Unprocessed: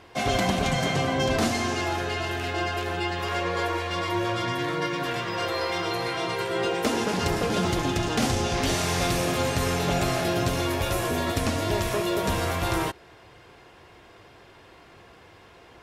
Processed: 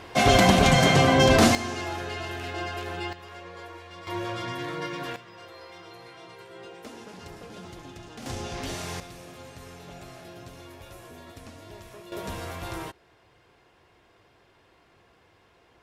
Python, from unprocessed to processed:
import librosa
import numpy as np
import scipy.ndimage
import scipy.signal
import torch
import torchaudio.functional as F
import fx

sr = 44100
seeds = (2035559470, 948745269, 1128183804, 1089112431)

y = fx.gain(x, sr, db=fx.steps((0.0, 6.5), (1.55, -5.0), (3.13, -15.5), (4.07, -5.5), (5.16, -18.0), (8.26, -9.0), (9.0, -19.5), (12.12, -9.5)))